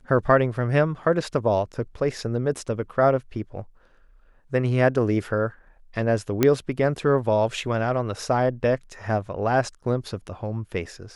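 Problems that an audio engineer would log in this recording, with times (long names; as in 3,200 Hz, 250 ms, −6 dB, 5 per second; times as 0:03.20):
0:06.43: click −5 dBFS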